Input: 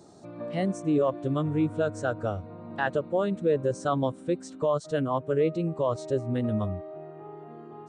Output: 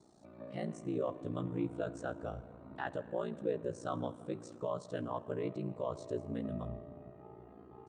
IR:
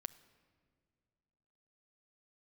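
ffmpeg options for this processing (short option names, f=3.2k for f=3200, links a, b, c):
-filter_complex "[1:a]atrim=start_sample=2205,asetrate=24255,aresample=44100[a];[0:a][a]afir=irnorm=-1:irlink=0,aeval=exprs='val(0)*sin(2*PI*29*n/s)':c=same,flanger=delay=0.9:depth=6:regen=-79:speed=0.36:shape=sinusoidal,volume=-3.5dB"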